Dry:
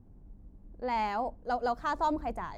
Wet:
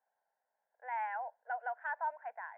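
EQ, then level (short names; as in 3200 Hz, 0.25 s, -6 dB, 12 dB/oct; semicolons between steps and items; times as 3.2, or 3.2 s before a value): HPF 730 Hz 24 dB/oct; ladder low-pass 1800 Hz, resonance 60%; fixed phaser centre 1200 Hz, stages 6; +5.0 dB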